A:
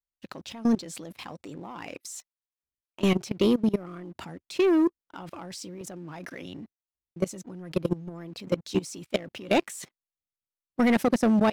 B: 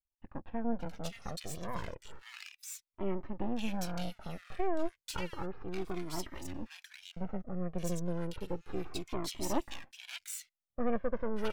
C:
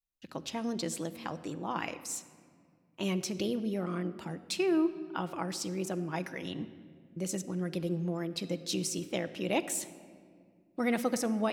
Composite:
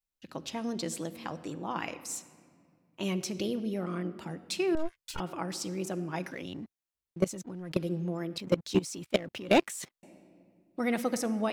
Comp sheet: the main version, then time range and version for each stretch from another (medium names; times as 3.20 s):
C
4.75–5.20 s: from B
6.31–7.77 s: from A
8.38–10.03 s: from A